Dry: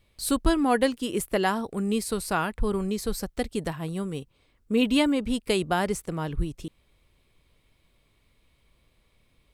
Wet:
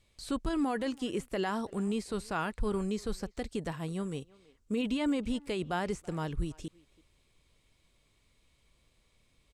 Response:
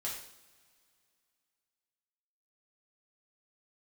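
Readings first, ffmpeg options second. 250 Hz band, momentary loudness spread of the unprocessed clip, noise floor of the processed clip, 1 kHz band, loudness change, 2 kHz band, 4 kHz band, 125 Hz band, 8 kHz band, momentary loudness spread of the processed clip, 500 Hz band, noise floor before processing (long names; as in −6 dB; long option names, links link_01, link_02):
−6.5 dB, 10 LU, −71 dBFS, −8.0 dB, −7.5 dB, −8.5 dB, −9.5 dB, −5.5 dB, −13.0 dB, 8 LU, −8.0 dB, −67 dBFS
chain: -filter_complex "[0:a]alimiter=limit=-18.5dB:level=0:latency=1:release=19,equalizer=frequency=7100:width=0.99:gain=11.5,acrossover=split=3300[link_01][link_02];[link_02]acompressor=threshold=-43dB:ratio=4:attack=1:release=60[link_03];[link_01][link_03]amix=inputs=2:normalize=0,highshelf=frequency=9500:gain=-7.5,asplit=2[link_04][link_05];[link_05]adelay=330,highpass=300,lowpass=3400,asoftclip=type=hard:threshold=-27dB,volume=-21dB[link_06];[link_04][link_06]amix=inputs=2:normalize=0,volume=-4.5dB"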